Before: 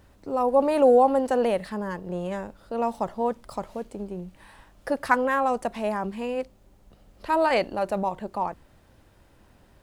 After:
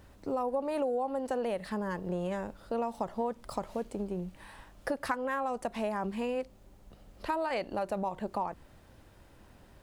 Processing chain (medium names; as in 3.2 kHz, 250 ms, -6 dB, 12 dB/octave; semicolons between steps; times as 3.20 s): compression 8:1, threshold -29 dBFS, peak gain reduction 15.5 dB